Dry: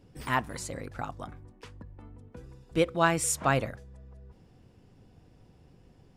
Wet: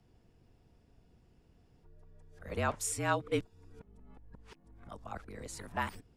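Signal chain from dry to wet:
played backwards from end to start
frequency shifter −42 Hz
level −7 dB

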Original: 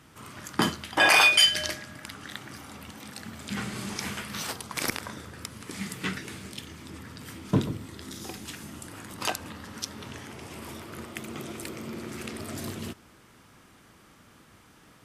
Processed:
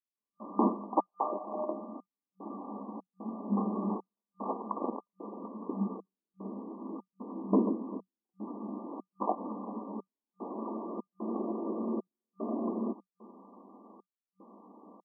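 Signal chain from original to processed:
single-tap delay 395 ms −22.5 dB
brickwall limiter −17.5 dBFS, peak gain reduction 10.5 dB
gate pattern "..xxx.xxxx" 75 BPM −60 dB
brick-wall band-pass 190–1,200 Hz
level +5.5 dB

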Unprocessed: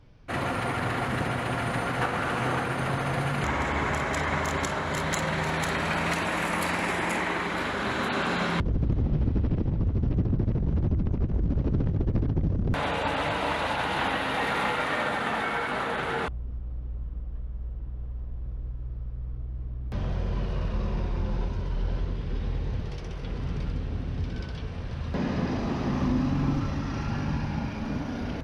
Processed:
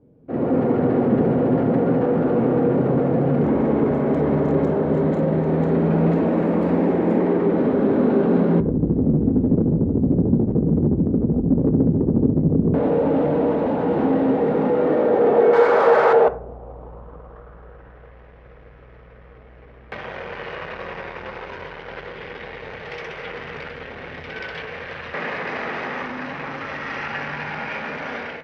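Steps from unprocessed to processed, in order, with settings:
automatic gain control gain up to 15 dB
drawn EQ curve 310 Hz 0 dB, 440 Hz +9 dB, 1,100 Hz −2 dB, 11,000 Hz −7 dB
in parallel at +1 dB: brickwall limiter −9.5 dBFS, peak gain reduction 9.5 dB
0:15.53–0:16.13: on the sum: flat-topped bell 1,500 Hz +12.5 dB
soft clipping −7.5 dBFS, distortion −12 dB
band-pass filter sweep 260 Hz → 2,000 Hz, 0:14.62–0:18.20
on a send at −10.5 dB: convolution reverb RT60 0.55 s, pre-delay 3 ms
on the sum: level +2.5 dB

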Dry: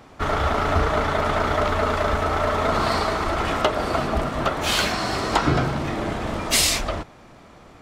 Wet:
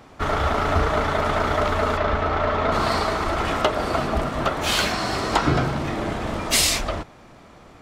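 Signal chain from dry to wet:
0:01.97–0:02.72: low-pass filter 4,100 Hz 12 dB per octave

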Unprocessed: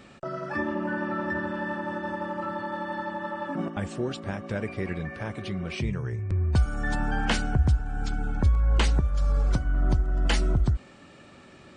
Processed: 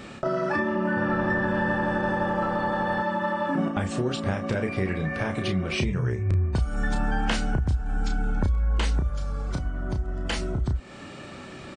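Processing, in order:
downward compressor 5 to 1, threshold −32 dBFS, peak gain reduction 14 dB
double-tracking delay 32 ms −6 dB
0:00.83–0:03.02: echo with shifted repeats 124 ms, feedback 50%, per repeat −86 Hz, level −10 dB
level +8.5 dB

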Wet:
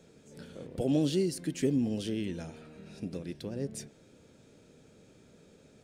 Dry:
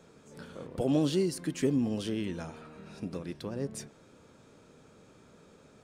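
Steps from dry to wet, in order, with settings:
parametric band 1,100 Hz −11.5 dB 0.83 octaves

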